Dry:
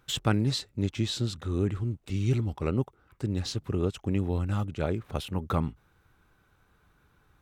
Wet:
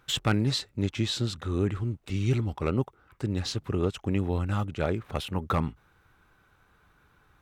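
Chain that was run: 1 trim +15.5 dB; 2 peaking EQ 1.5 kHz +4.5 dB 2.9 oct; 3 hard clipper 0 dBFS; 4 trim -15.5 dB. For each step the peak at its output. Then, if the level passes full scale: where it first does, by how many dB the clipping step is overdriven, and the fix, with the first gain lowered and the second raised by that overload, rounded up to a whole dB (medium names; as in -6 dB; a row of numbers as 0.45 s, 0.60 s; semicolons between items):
+5.0 dBFS, +7.5 dBFS, 0.0 dBFS, -15.5 dBFS; step 1, 7.5 dB; step 1 +7.5 dB, step 4 -7.5 dB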